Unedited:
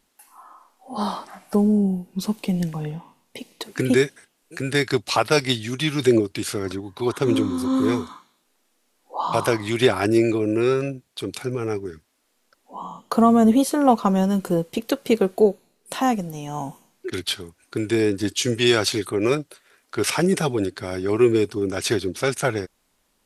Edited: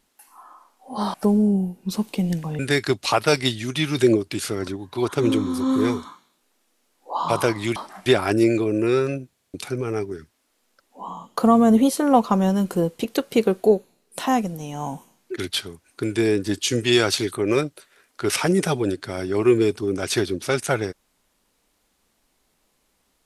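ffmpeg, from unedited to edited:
-filter_complex "[0:a]asplit=8[s0][s1][s2][s3][s4][s5][s6][s7];[s0]atrim=end=1.142[s8];[s1]atrim=start=1.438:end=2.892[s9];[s2]atrim=start=4.628:end=9.802[s10];[s3]atrim=start=1.138:end=1.442[s11];[s4]atrim=start=9.798:end=11.142[s12];[s5]atrim=start=11.068:end=11.142[s13];[s6]atrim=start=11.068:end=11.142[s14];[s7]atrim=start=11.278[s15];[s8][s9]acrossfade=d=0.004:c1=hsin:c2=hsin[s16];[s16][s10]acrossfade=d=0.004:c1=hsin:c2=hsin[s17];[s17][s11]acrossfade=d=0.004:c1=hsin:c2=hsin[s18];[s18][s12]acrossfade=d=0.004:c1=hsin:c2=hsin[s19];[s19][s13]acrossfade=d=0.004:c1=hsin:c2=hsin[s20];[s20][s14]acrossfade=d=0.004:c1=hsin:c2=hsin[s21];[s21][s15]acrossfade=d=0.004:c1=hsin:c2=hsin"

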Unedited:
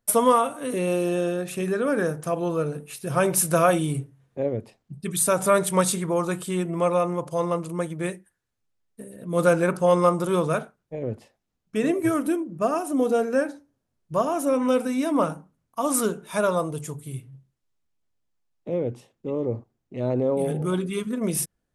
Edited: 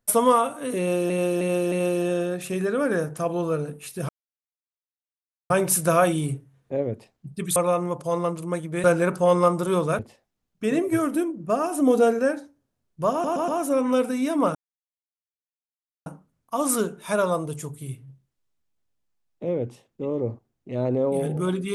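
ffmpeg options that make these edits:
-filter_complex "[0:a]asplit=14[s0][s1][s2][s3][s4][s5][s6][s7][s8][s9][s10][s11][s12][s13];[s0]atrim=end=1.102[s14];[s1]atrim=start=0.788:end=1.102[s15];[s2]atrim=start=0.788:end=1.102[s16];[s3]atrim=start=0.788:end=3.16,asetpts=PTS-STARTPTS,afade=t=out:st=2.368:d=0.004:c=hsin,apad=pad_dur=1.41[s17];[s4]atrim=start=3.16:end=5.222,asetpts=PTS-STARTPTS,afade=t=in:d=0.004:c=hsin[s18];[s5]atrim=start=6.828:end=8.112[s19];[s6]atrim=start=9.448:end=10.602[s20];[s7]atrim=start=11.108:end=12.832[s21];[s8]atrim=start=12.828:end=13.312,asetpts=PTS-STARTPTS,volume=1.5[s22];[s9]atrim=start=13.308:end=14.362[s23];[s10]atrim=start=14.238:end=14.362[s24];[s11]atrim=start=14.238:end=14.362[s25];[s12]atrim=start=14.238:end=15.31,asetpts=PTS-STARTPTS,afade=t=out:st=1.068:d=0.004:c=hsin,apad=pad_dur=1.51[s26];[s13]atrim=start=15.31,asetpts=PTS-STARTPTS,afade=t=in:d=0.004:c=hsin[s27];[s14][s15]acrossfade=d=0.004:c1=hsin:c2=hsin[s28];[s28][s16]acrossfade=d=0.004:c1=hsin:c2=hsin[s29];[s17][s18]concat=n=2:v=0:a=1[s30];[s29][s30]acrossfade=d=0.004:c1=hsin:c2=hsin[s31];[s31][s19]acrossfade=d=0.004:c1=hsin:c2=hsin[s32];[s32][s20]acrossfade=d=0.004:c1=hsin:c2=hsin[s33];[s33][s21]acrossfade=d=0.004:c1=hsin:c2=hsin[s34];[s34][s22]acrossfade=d=0.004:c1=hsin:c2=hsin[s35];[s35][s23]acrossfade=d=0.004:c1=hsin:c2=hsin[s36];[s36][s24]acrossfade=d=0.004:c1=hsin:c2=hsin[s37];[s37][s25]acrossfade=d=0.004:c1=hsin:c2=hsin[s38];[s26][s27]concat=n=2:v=0:a=1[s39];[s38][s39]acrossfade=d=0.004:c1=hsin:c2=hsin"

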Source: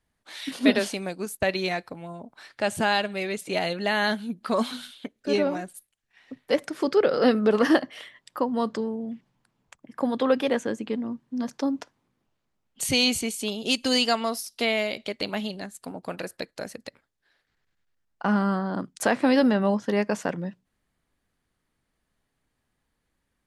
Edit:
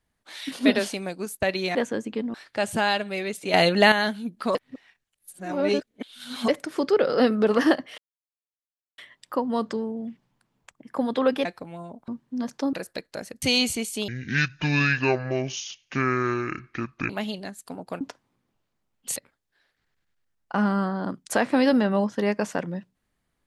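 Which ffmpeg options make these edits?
-filter_complex "[0:a]asplit=16[s0][s1][s2][s3][s4][s5][s6][s7][s8][s9][s10][s11][s12][s13][s14][s15];[s0]atrim=end=1.752[s16];[s1]atrim=start=10.488:end=11.082[s17];[s2]atrim=start=2.378:end=3.582[s18];[s3]atrim=start=3.578:end=3.962,asetpts=PTS-STARTPTS,volume=2.82[s19];[s4]atrim=start=3.958:end=4.592[s20];[s5]atrim=start=4.588:end=6.522,asetpts=PTS-STARTPTS,areverse[s21];[s6]atrim=start=6.518:end=8.02,asetpts=PTS-STARTPTS,afade=t=out:st=1.498:d=0.004:c=hsin,apad=pad_dur=1[s22];[s7]atrim=start=8.02:end=10.492,asetpts=PTS-STARTPTS,afade=t=in:d=0.004:c=hsin[s23];[s8]atrim=start=1.748:end=2.382[s24];[s9]atrim=start=11.078:end=11.732[s25];[s10]atrim=start=16.168:end=16.862[s26];[s11]atrim=start=12.878:end=13.544[s27];[s12]atrim=start=13.54:end=15.26,asetpts=PTS-STARTPTS,asetrate=25137,aresample=44100[s28];[s13]atrim=start=15.256:end=16.172[s29];[s14]atrim=start=11.728:end=12.882[s30];[s15]atrim=start=16.858[s31];[s16][s17]acrossfade=d=0.004:c1=hsin:c2=hsin[s32];[s32][s18]acrossfade=d=0.004:c1=hsin:c2=hsin[s33];[s33][s19]acrossfade=d=0.004:c1=hsin:c2=hsin[s34];[s34][s20]acrossfade=d=0.004:c1=hsin:c2=hsin[s35];[s35][s21]acrossfade=d=0.004:c1=hsin:c2=hsin[s36];[s22][s23]concat=n=2:v=0:a=1[s37];[s36][s37]acrossfade=d=0.004:c1=hsin:c2=hsin[s38];[s38][s24]acrossfade=d=0.004:c1=hsin:c2=hsin[s39];[s39][s25]acrossfade=d=0.004:c1=hsin:c2=hsin[s40];[s40][s26]acrossfade=d=0.004:c1=hsin:c2=hsin[s41];[s41][s27]acrossfade=d=0.004:c1=hsin:c2=hsin[s42];[s42][s28]acrossfade=d=0.004:c1=hsin:c2=hsin[s43];[s43][s29]acrossfade=d=0.004:c1=hsin:c2=hsin[s44];[s44][s30]acrossfade=d=0.004:c1=hsin:c2=hsin[s45];[s45][s31]acrossfade=d=0.004:c1=hsin:c2=hsin"

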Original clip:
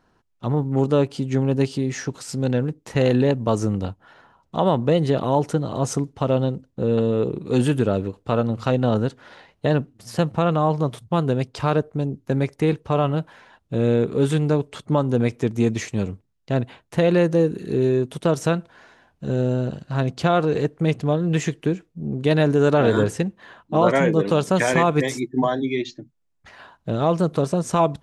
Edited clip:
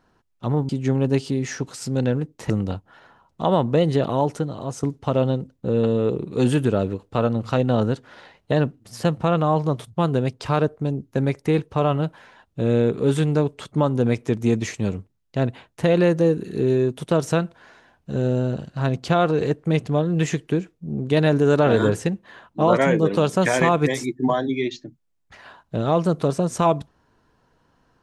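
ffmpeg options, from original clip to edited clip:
-filter_complex "[0:a]asplit=4[s0][s1][s2][s3];[s0]atrim=end=0.692[s4];[s1]atrim=start=1.158:end=2.972[s5];[s2]atrim=start=3.638:end=5.97,asetpts=PTS-STARTPTS,afade=t=out:st=1.542:d=0.79:silence=0.354813[s6];[s3]atrim=start=5.97,asetpts=PTS-STARTPTS,afade=t=in:d=0.004:c=hsin:silence=0.354813[s7];[s4][s5]acrossfade=d=0.004:c1=hsin:c2=hsin[s8];[s6][s7]concat=n=2:v=0:a=1[s9];[s8][s9]acrossfade=d=0.004:c1=hsin:c2=hsin"

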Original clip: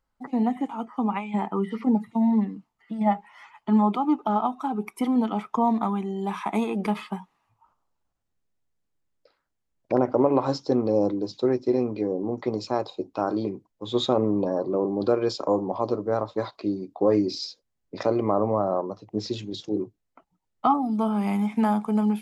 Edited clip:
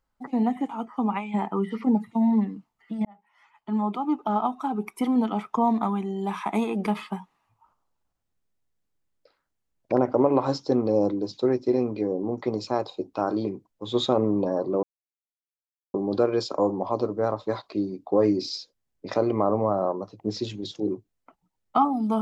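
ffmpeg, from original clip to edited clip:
-filter_complex "[0:a]asplit=3[s0][s1][s2];[s0]atrim=end=3.05,asetpts=PTS-STARTPTS,afade=t=out:st=3.046:d=0.004:c=hsin[s3];[s1]atrim=start=3.05:end=14.83,asetpts=PTS-STARTPTS,afade=t=in:d=1.45,afade=t=out:st=11.776:d=0.004:c=hsin,apad=pad_dur=1.11[s4];[s2]atrim=start=14.83,asetpts=PTS-STARTPTS,afade=t=in:d=0.004:c=hsin[s5];[s3][s4][s5]concat=n=3:v=0:a=1"

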